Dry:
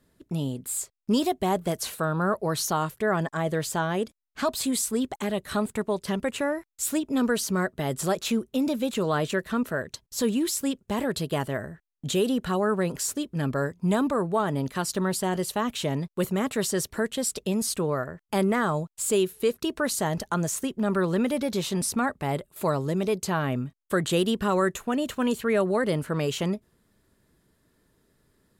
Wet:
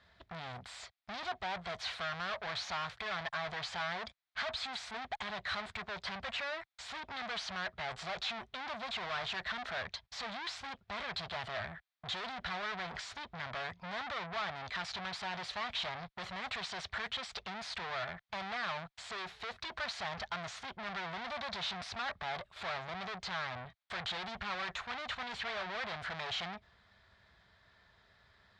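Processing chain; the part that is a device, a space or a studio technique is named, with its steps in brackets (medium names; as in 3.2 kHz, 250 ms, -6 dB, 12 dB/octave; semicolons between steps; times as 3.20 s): scooped metal amplifier (valve stage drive 43 dB, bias 0.5; cabinet simulation 82–3700 Hz, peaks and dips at 140 Hz -9 dB, 470 Hz -3 dB, 710 Hz +7 dB, 2.8 kHz -7 dB; amplifier tone stack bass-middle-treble 10-0-10); trim +17 dB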